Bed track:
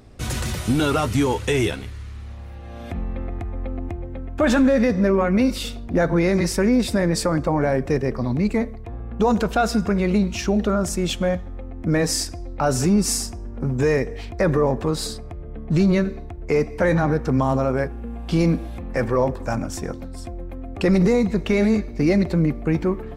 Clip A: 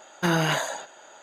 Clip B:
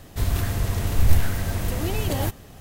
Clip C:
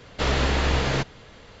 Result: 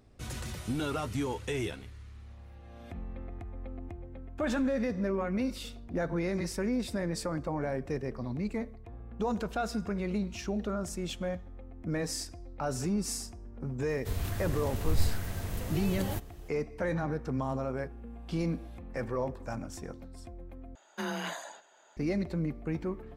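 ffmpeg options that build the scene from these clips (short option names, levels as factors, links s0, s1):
-filter_complex "[0:a]volume=0.224[s0];[1:a]afreqshift=27[s1];[s0]asplit=2[s2][s3];[s2]atrim=end=20.754[s4];[s1]atrim=end=1.22,asetpts=PTS-STARTPTS,volume=0.237[s5];[s3]atrim=start=21.966[s6];[2:a]atrim=end=2.6,asetpts=PTS-STARTPTS,volume=0.316,afade=t=in:d=0.004:c=hsin,afade=t=out:st=2.596:d=0.004:c=hsin,adelay=13890[s7];[s4][s5]acrossfade=d=0.004:c1=hsin:c2=hsin[s8];[s8][s6]acrossfade=d=0.004:c1=hsin:c2=hsin[s9];[s9][s7]amix=inputs=2:normalize=0"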